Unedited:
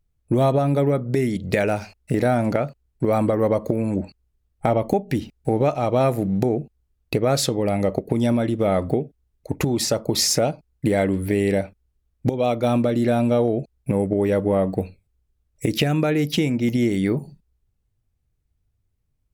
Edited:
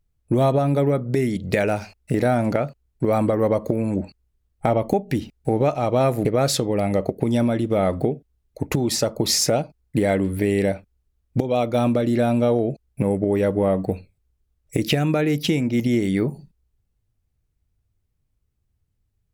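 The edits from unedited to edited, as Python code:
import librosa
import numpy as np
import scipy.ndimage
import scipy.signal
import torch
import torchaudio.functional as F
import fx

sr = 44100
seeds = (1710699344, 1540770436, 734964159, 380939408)

y = fx.edit(x, sr, fx.cut(start_s=6.25, length_s=0.89), tone=tone)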